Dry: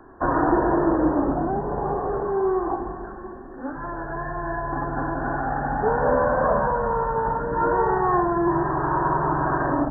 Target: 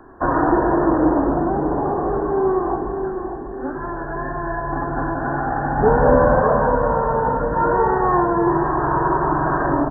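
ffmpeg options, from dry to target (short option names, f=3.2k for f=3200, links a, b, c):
-filter_complex "[0:a]asettb=1/sr,asplit=3[a][b][c];[a]atrim=end=5.774[d];[b]atrim=start=5.77:end=6.4,asetpts=PTS-STARTPTS,afade=t=in:d=0.004:c=qsin,afade=t=out:st=0.626:d=0.004:c=qsin,lowshelf=f=450:g=8[e];[c]atrim=start=6.396[f];[d][e]acrossfade=d=0.004:c1=hsin:c2=qsin[g];[g][f]acrossfade=d=0.004:c1=qsin:c2=hsin,asplit=2[h][i];[i]adelay=596,lowpass=f=930:p=1,volume=-7dB,asplit=2[j][k];[k]adelay=596,lowpass=f=930:p=1,volume=0.54,asplit=2[l][m];[m]adelay=596,lowpass=f=930:p=1,volume=0.54,asplit=2[n][o];[o]adelay=596,lowpass=f=930:p=1,volume=0.54,asplit=2[p][q];[q]adelay=596,lowpass=f=930:p=1,volume=0.54,asplit=2[r][s];[s]adelay=596,lowpass=f=930:p=1,volume=0.54,asplit=2[t][u];[u]adelay=596,lowpass=f=930:p=1,volume=0.54[v];[h][j][l][n][p][r][t][v]amix=inputs=8:normalize=0,volume=3dB"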